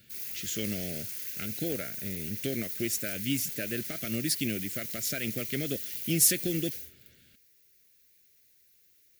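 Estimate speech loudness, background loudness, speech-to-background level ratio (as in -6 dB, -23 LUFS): -31.5 LUFS, -35.0 LUFS, 3.5 dB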